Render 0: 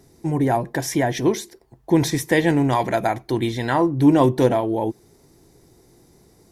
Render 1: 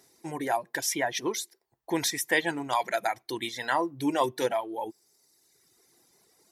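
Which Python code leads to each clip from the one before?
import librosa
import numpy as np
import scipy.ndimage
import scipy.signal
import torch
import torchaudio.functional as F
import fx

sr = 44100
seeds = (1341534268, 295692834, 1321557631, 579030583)

y = fx.highpass(x, sr, hz=1300.0, slope=6)
y = fx.dereverb_blind(y, sr, rt60_s=1.4)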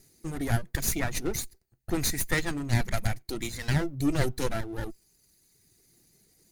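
y = fx.lower_of_two(x, sr, delay_ms=0.45)
y = fx.bass_treble(y, sr, bass_db=15, treble_db=7)
y = y * 10.0 ** (-3.5 / 20.0)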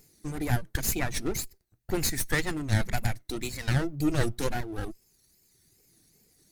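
y = fx.wow_flutter(x, sr, seeds[0], rate_hz=2.1, depth_cents=140.0)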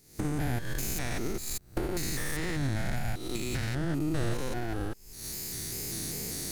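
y = fx.spec_steps(x, sr, hold_ms=200)
y = fx.recorder_agc(y, sr, target_db=-23.5, rise_db_per_s=75.0, max_gain_db=30)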